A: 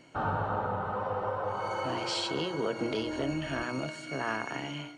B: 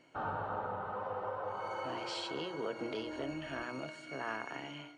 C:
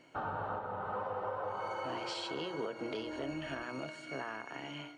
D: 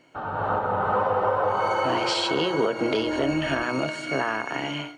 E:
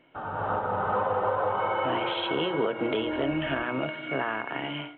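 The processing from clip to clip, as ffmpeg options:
-af "bass=f=250:g=-6,treble=f=4k:g=-5,volume=-6dB"
-af "alimiter=level_in=7dB:limit=-24dB:level=0:latency=1:release=396,volume=-7dB,volume=3dB"
-af "dynaudnorm=f=160:g=5:m=12dB,volume=3dB"
-af "volume=-3.5dB" -ar 8000 -c:a pcm_mulaw

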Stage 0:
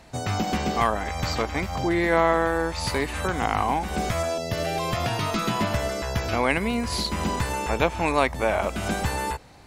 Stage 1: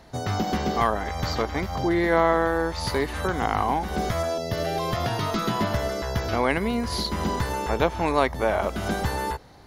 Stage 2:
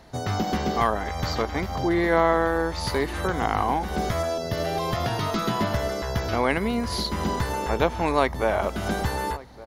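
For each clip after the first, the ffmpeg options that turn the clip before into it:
-af "equalizer=f=400:t=o:w=0.33:g=3,equalizer=f=2.5k:t=o:w=0.33:g=-8,equalizer=f=8k:t=o:w=0.33:g=-11"
-filter_complex "[0:a]asplit=2[a][b];[b]adelay=1166,volume=-19dB,highshelf=f=4k:g=-26.2[c];[a][c]amix=inputs=2:normalize=0"

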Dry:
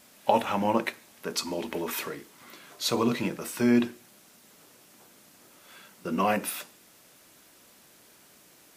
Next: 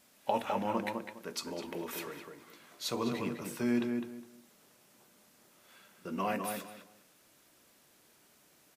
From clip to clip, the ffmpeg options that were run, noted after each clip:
-filter_complex "[0:a]asplit=2[a][b];[b]adelay=205,lowpass=f=2.1k:p=1,volume=-4.5dB,asplit=2[c][d];[d]adelay=205,lowpass=f=2.1k:p=1,volume=0.24,asplit=2[e][f];[f]adelay=205,lowpass=f=2.1k:p=1,volume=0.24[g];[a][c][e][g]amix=inputs=4:normalize=0,volume=-8.5dB"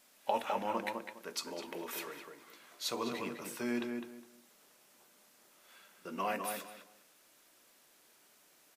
-af "equalizer=f=85:w=0.42:g=-13"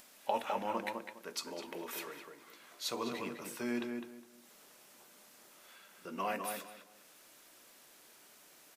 -af "acompressor=mode=upward:threshold=-51dB:ratio=2.5,volume=-1dB"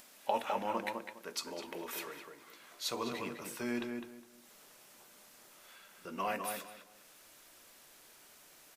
-af "asubboost=boost=2.5:cutoff=120,volume=1dB"

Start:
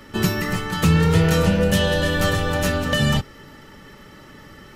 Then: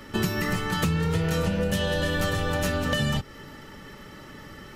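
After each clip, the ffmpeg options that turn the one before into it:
-af "acompressor=threshold=-22dB:ratio=6"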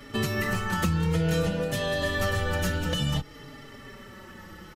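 -filter_complex "[0:a]asplit=2[a][b];[b]adelay=4.5,afreqshift=-0.56[c];[a][c]amix=inputs=2:normalize=1,volume=1.5dB"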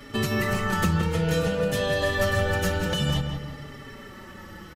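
-filter_complex "[0:a]asplit=2[a][b];[b]adelay=168,lowpass=f=2.3k:p=1,volume=-5dB,asplit=2[c][d];[d]adelay=168,lowpass=f=2.3k:p=1,volume=0.44,asplit=2[e][f];[f]adelay=168,lowpass=f=2.3k:p=1,volume=0.44,asplit=2[g][h];[h]adelay=168,lowpass=f=2.3k:p=1,volume=0.44,asplit=2[i][j];[j]adelay=168,lowpass=f=2.3k:p=1,volume=0.44[k];[a][c][e][g][i][k]amix=inputs=6:normalize=0,volume=1.5dB"

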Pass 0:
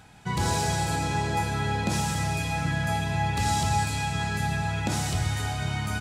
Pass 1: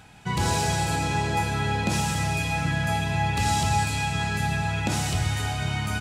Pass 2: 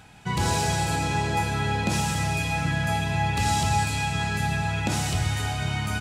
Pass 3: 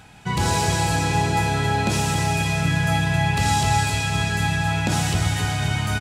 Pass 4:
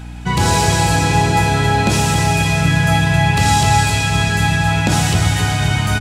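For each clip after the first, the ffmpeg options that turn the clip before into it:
-af "equalizer=f=2.7k:t=o:w=0.43:g=4,volume=1.5dB"
-af anull
-af "aecho=1:1:268|536|804|1072|1340|1608|1876:0.398|0.223|0.125|0.0699|0.0392|0.0219|0.0123,volume=3dB"
-af "aeval=exprs='val(0)+0.0158*(sin(2*PI*60*n/s)+sin(2*PI*2*60*n/s)/2+sin(2*PI*3*60*n/s)/3+sin(2*PI*4*60*n/s)/4+sin(2*PI*5*60*n/s)/5)':c=same,volume=6.5dB"

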